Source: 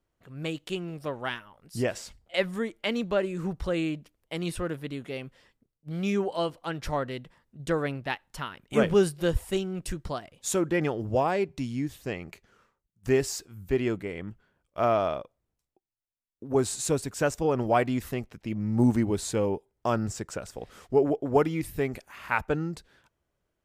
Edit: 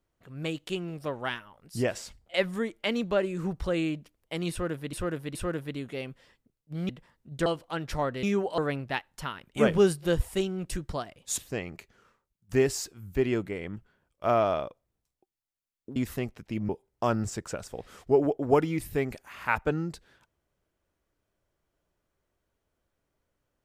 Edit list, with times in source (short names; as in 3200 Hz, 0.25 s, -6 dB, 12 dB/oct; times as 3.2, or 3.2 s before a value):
4.51–4.93 loop, 3 plays
6.05–6.4 swap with 7.17–7.74
10.54–11.92 cut
16.5–17.91 cut
18.64–19.52 cut